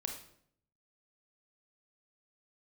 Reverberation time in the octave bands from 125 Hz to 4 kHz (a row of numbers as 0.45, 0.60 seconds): 0.95, 0.80, 0.70, 0.60, 0.55, 0.50 seconds